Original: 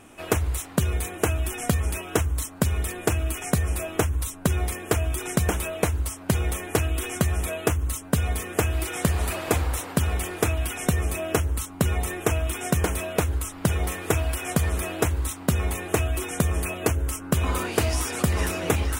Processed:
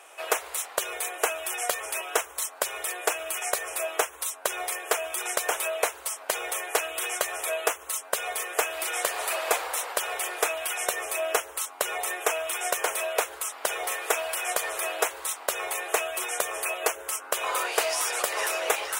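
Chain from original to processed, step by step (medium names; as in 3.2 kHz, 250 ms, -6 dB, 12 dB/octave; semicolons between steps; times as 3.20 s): inverse Chebyshev high-pass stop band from 250 Hz, stop band 40 dB; in parallel at -8 dB: saturation -22.5 dBFS, distortion -10 dB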